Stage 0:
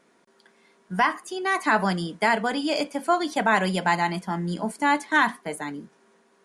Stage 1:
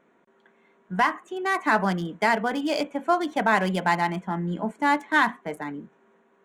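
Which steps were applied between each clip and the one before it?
adaptive Wiener filter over 9 samples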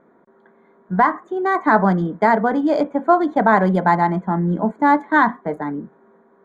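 moving average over 16 samples
level +9 dB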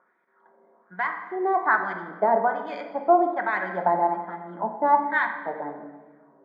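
auto-filter band-pass sine 1.2 Hz 560–2,400 Hz
rectangular room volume 1,400 cubic metres, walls mixed, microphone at 0.99 metres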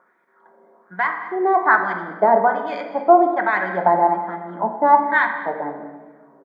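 single-tap delay 205 ms −17 dB
level +6 dB

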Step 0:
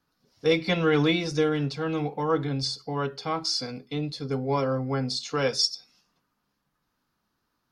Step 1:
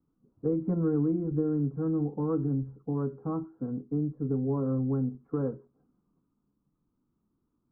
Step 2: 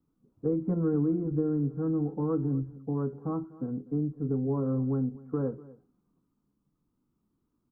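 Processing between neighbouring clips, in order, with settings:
Butterworth low-pass 1,300 Hz 48 dB per octave; low shelf with overshoot 460 Hz +11 dB, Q 1.5; downward compressor 2.5 to 1, threshold −18 dBFS, peak gain reduction 7.5 dB; level −8.5 dB
single-tap delay 246 ms −20 dB

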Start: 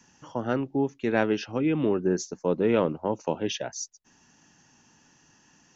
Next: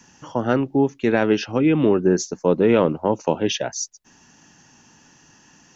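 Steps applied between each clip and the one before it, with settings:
boost into a limiter +12.5 dB
level −5 dB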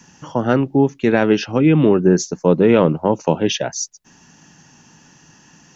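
parametric band 160 Hz +6 dB 0.52 octaves
level +3 dB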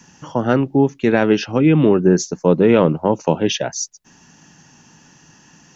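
no processing that can be heard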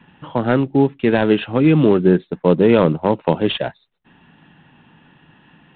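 IMA ADPCM 32 kbit/s 8,000 Hz

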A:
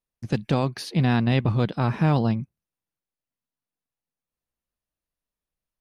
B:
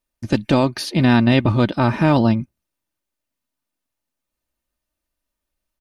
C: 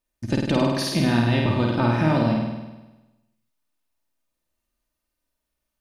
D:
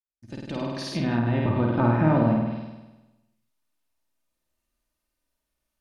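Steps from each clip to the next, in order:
comb filter 3.3 ms, depth 49%; level +7 dB
downward compressor 4 to 1, threshold −17 dBFS, peak gain reduction 6.5 dB; on a send: flutter between parallel walls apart 8.7 metres, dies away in 1.1 s; on the sum: level −2.5 dB
fade in at the beginning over 1.92 s; treble cut that deepens with the level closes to 1,600 Hz, closed at −19 dBFS

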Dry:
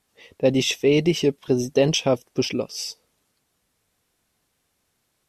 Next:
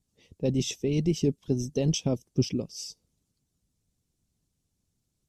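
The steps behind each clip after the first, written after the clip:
low-shelf EQ 450 Hz +9.5 dB
harmonic and percussive parts rebalanced harmonic −7 dB
drawn EQ curve 150 Hz 0 dB, 560 Hz −12 dB, 1,800 Hz −15 dB, 6,800 Hz 0 dB, 12,000 Hz −7 dB
level −3.5 dB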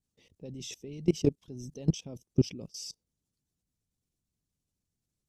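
output level in coarse steps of 22 dB
level +2.5 dB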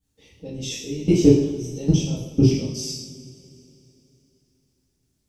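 coupled-rooms reverb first 0.74 s, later 3.4 s, from −20 dB, DRR −9.5 dB
level +1.5 dB

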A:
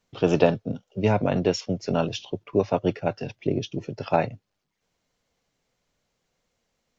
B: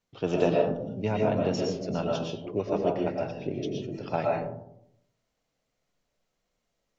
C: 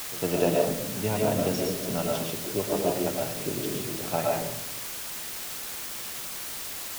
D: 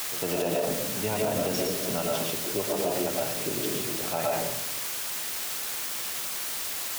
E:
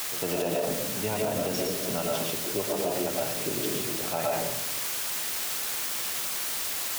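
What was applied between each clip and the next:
convolution reverb RT60 0.75 s, pre-delay 80 ms, DRR −1.5 dB; level −8 dB
echo ahead of the sound 105 ms −17 dB; bit-depth reduction 6 bits, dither triangular
low-shelf EQ 300 Hz −7.5 dB; brickwall limiter −21 dBFS, peak gain reduction 9 dB; level +3.5 dB
speech leveller

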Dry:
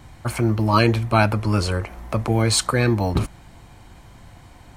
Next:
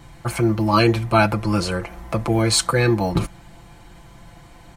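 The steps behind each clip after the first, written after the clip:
comb filter 5.9 ms, depth 59%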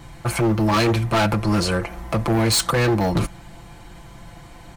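hard clipping −18.5 dBFS, distortion −8 dB
level +3 dB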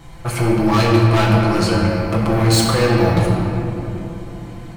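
rectangular room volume 180 cubic metres, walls hard, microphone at 0.63 metres
level −1.5 dB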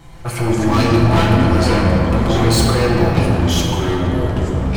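delay with pitch and tempo change per echo 135 ms, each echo −5 semitones, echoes 2
level −1 dB

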